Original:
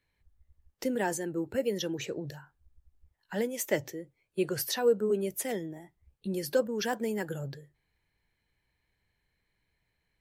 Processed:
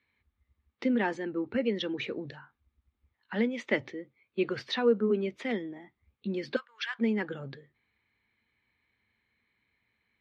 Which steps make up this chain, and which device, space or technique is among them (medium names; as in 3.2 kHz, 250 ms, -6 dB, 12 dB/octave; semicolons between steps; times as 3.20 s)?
6.56–6.99 s: high-pass 1.3 kHz 24 dB/octave; guitar cabinet (cabinet simulation 85–3900 Hz, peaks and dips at 160 Hz -9 dB, 230 Hz +10 dB, 620 Hz -4 dB, 1.2 kHz +7 dB, 2.2 kHz +8 dB, 3.7 kHz +5 dB)